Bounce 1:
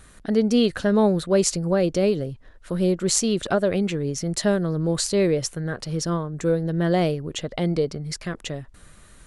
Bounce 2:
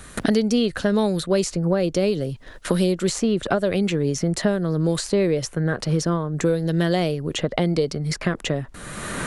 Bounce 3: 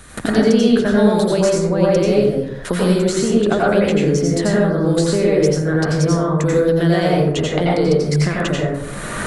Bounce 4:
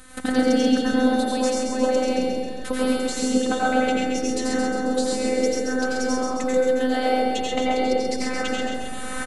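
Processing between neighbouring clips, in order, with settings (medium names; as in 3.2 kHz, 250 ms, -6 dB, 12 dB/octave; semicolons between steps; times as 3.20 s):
gate with hold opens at -39 dBFS; three bands compressed up and down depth 100%
plate-style reverb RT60 0.88 s, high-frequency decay 0.35×, pre-delay 75 ms, DRR -5 dB
robot voice 256 Hz; feedback delay 134 ms, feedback 59%, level -4 dB; trim -3 dB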